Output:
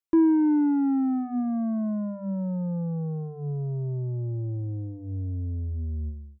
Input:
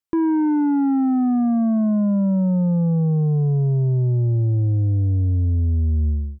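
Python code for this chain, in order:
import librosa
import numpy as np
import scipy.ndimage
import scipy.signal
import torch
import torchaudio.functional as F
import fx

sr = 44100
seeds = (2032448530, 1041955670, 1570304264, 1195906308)

y = fx.dereverb_blind(x, sr, rt60_s=1.7)
y = fx.hum_notches(y, sr, base_hz=50, count=5)
y = fx.dynamic_eq(y, sr, hz=300.0, q=2.7, threshold_db=-38.0, ratio=4.0, max_db=7)
y = y * 10.0 ** (-4.5 / 20.0)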